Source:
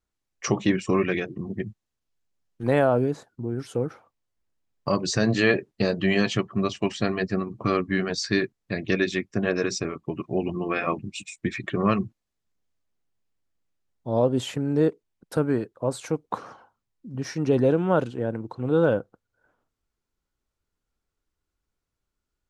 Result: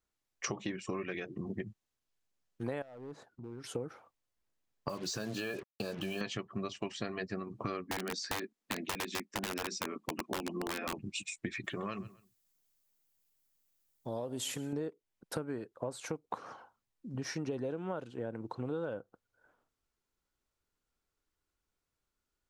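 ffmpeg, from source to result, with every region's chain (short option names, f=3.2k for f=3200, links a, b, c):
-filter_complex "[0:a]asettb=1/sr,asplit=3[a][b][c];[a]atrim=end=2.824[d];[b]atrim=start=2.82:end=3.64,asetpts=PTS-STARTPTS,afade=t=in:d=0.004:c=qsin,afade=t=out:st=0.816:d=0.004:c=qsin,lowpass=f=3.7k:p=1,acompressor=threshold=-46dB:ratio=2:attack=3.2:release=140:knee=1:detection=peak,volume=34.5dB,asoftclip=hard,volume=-34.5dB[e];[c]atrim=start=3.636[f];[d][e]acrossfade=d=0.004:c1=hsin:c2=qsin[g];[g][f]acrossfade=d=0.004:c1=qsin:c2=hsin,asettb=1/sr,asplit=3[h][i][j];[h]atrim=end=4.894[k];[i]atrim=start=4.89:end=6.21,asetpts=PTS-STARTPTS,afade=t=in:d=0.004:c=qsin,afade=t=out:st=1.316:d=0.004:c=qsin,asuperstop=centerf=2000:order=12:qfactor=4,acompressor=threshold=-28dB:ratio=2.5:attack=3.2:release=140:knee=1:detection=peak,acrusher=bits=6:mix=0:aa=0.5[l];[j]atrim=start=6.206[m];[k][l]acrossfade=d=0.004:c1=hsin:c2=qsin[n];[n][m]acrossfade=d=0.004:c1=qsin:c2=hsin,asettb=1/sr,asplit=3[o][p][q];[o]atrim=end=7.874[r];[p]atrim=start=7.87:end=10.93,asetpts=PTS-STARTPTS,afade=t=in:d=0.004:c=qsin,afade=t=out:st=3.056:d=0.004:c=qsin,lowshelf=f=160:t=q:w=3:g=-11,acrossover=split=420|1000[s][t][u];[s]acompressor=threshold=-26dB:ratio=4[v];[t]acompressor=threshold=-36dB:ratio=4[w];[u]acompressor=threshold=-33dB:ratio=4[x];[v][w][x]amix=inputs=3:normalize=0,aeval=exprs='(mod(10*val(0)+1,2)-1)/10':c=same[y];[q]atrim=start=10.926[z];[r][y]acrossfade=d=0.004:c1=hsin:c2=qsin[aa];[aa][z]acrossfade=d=0.004:c1=qsin:c2=hsin,asettb=1/sr,asplit=3[ab][ac][ad];[ab]atrim=end=11.644[ae];[ac]atrim=start=11.64:end=14.73,asetpts=PTS-STARTPTS,afade=t=in:d=0.004:c=qsin,afade=t=out:st=3.086:d=0.004:c=qsin,aemphasis=mode=production:type=75fm,acompressor=threshold=-32dB:ratio=2:attack=3.2:release=140:knee=1:detection=peak,aecho=1:1:130|260:0.0794|0.0207,atrim=end_sample=136269[af];[ad]atrim=start=14.726[ag];[ae][af]acrossfade=d=0.004:c1=hsin:c2=qsin[ah];[ah][ag]acrossfade=d=0.004:c1=qsin:c2=hsin,lowshelf=f=250:g=-6,acompressor=threshold=-33dB:ratio=10,volume=-1dB"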